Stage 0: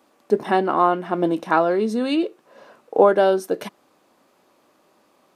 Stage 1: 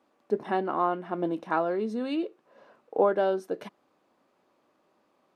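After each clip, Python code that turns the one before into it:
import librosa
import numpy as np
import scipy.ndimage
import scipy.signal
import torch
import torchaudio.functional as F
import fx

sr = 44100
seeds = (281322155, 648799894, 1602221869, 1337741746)

y = fx.lowpass(x, sr, hz=3100.0, slope=6)
y = F.gain(torch.from_numpy(y), -8.5).numpy()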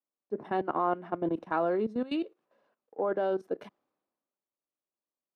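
y = fx.level_steps(x, sr, step_db=15)
y = fx.high_shelf(y, sr, hz=3700.0, db=-9.5)
y = fx.band_widen(y, sr, depth_pct=70)
y = F.gain(torch.from_numpy(y), 2.0).numpy()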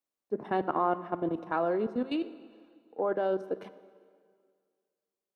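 y = fx.rider(x, sr, range_db=4, speed_s=2.0)
y = fx.rev_plate(y, sr, seeds[0], rt60_s=2.0, hf_ratio=0.9, predelay_ms=0, drr_db=14.0)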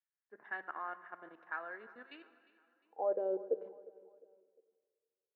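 y = fx.filter_sweep_bandpass(x, sr, from_hz=1700.0, to_hz=470.0, start_s=2.7, end_s=3.2, q=5.4)
y = fx.echo_feedback(y, sr, ms=354, feedback_pct=43, wet_db=-20.0)
y = F.gain(torch.from_numpy(y), 2.0).numpy()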